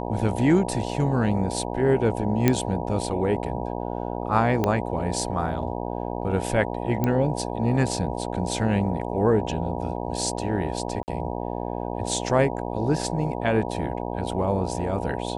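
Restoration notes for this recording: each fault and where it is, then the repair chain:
mains buzz 60 Hz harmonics 16 −30 dBFS
0:02.48: click −5 dBFS
0:04.64: click −10 dBFS
0:07.04: click −11 dBFS
0:11.03–0:11.08: drop-out 49 ms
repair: click removal
hum removal 60 Hz, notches 16
repair the gap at 0:11.03, 49 ms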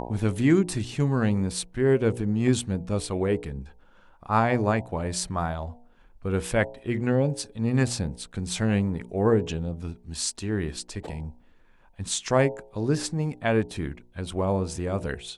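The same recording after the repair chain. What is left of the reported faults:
0:04.64: click

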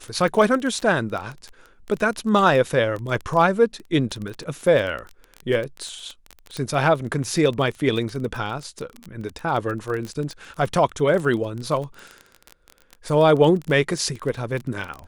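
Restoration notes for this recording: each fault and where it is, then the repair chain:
surface crackle 20 per second −26 dBFS
0:06.57: click −16 dBFS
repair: click removal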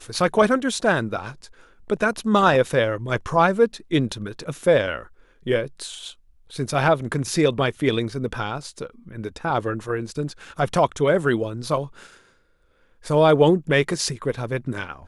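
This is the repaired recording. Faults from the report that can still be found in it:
none of them is left

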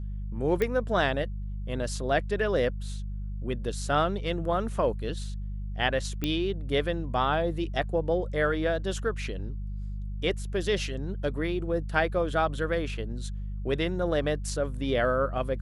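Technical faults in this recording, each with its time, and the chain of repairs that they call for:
mains hum 50 Hz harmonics 4 −34 dBFS
0:00.62: click −15 dBFS
0:06.24: click −14 dBFS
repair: click removal
hum removal 50 Hz, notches 4

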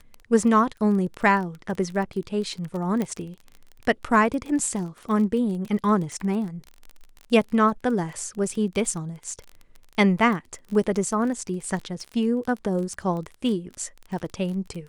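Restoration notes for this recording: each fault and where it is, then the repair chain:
surface crackle 28 per second −31 dBFS
0:03.02: click −14 dBFS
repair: click removal

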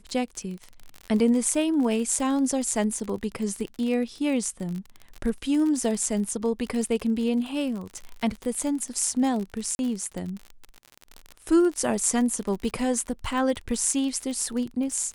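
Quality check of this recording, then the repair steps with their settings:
surface crackle 43 per second −30 dBFS
0:09.75–0:09.79: drop-out 41 ms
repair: click removal
repair the gap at 0:09.75, 41 ms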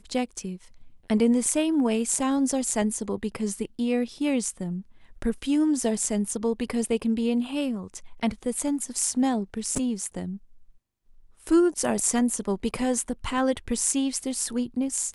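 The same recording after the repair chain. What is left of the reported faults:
none of them is left

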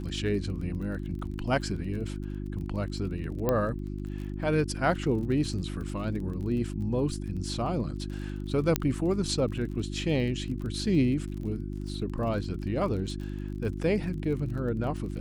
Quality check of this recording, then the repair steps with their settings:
surface crackle 33 per second −38 dBFS
mains hum 50 Hz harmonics 7 −35 dBFS
0:03.49: click −13 dBFS
0:08.76: click −8 dBFS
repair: click removal
hum removal 50 Hz, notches 7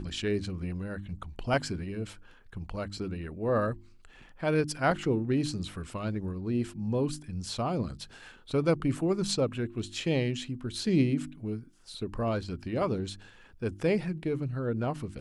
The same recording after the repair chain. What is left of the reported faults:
none of them is left

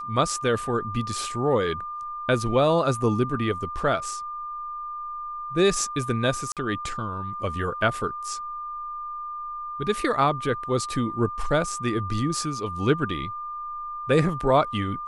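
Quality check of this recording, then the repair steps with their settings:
whistle 1,200 Hz −31 dBFS
0:06.52–0:06.57: drop-out 47 ms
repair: notch filter 1,200 Hz, Q 30
repair the gap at 0:06.52, 47 ms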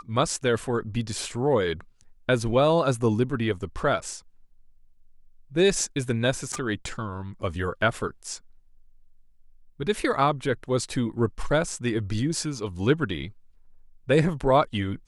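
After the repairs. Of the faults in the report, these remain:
none of them is left

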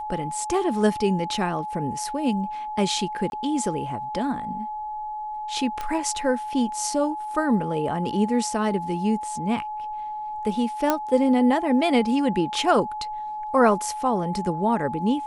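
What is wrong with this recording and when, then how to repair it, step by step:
whistle 850 Hz −29 dBFS
0:03.30–0:03.32: drop-out 21 ms
0:05.81: click −16 dBFS
0:10.90: click −6 dBFS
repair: click removal
notch filter 850 Hz, Q 30
repair the gap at 0:03.30, 21 ms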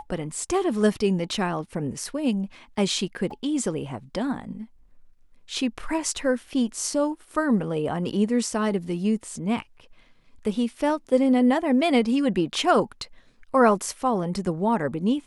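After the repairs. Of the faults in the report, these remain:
none of them is left

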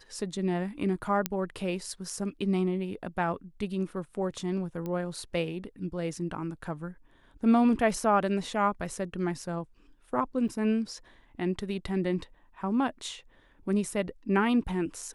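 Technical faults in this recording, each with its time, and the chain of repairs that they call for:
0:01.26: click −10 dBFS
0:04.86: click −23 dBFS
0:10.48–0:10.49: drop-out 6.2 ms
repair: click removal
repair the gap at 0:10.48, 6.2 ms

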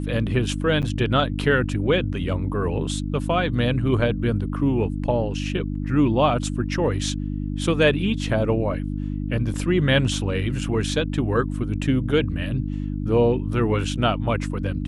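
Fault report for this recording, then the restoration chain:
mains hum 50 Hz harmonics 6 −27 dBFS
0:00.82–0:00.83: drop-out 8.1 ms
0:09.54: drop-out 3.1 ms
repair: hum removal 50 Hz, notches 6
repair the gap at 0:00.82, 8.1 ms
repair the gap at 0:09.54, 3.1 ms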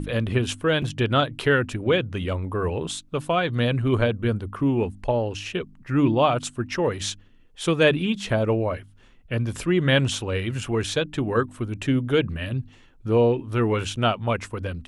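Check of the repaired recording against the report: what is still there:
none of them is left

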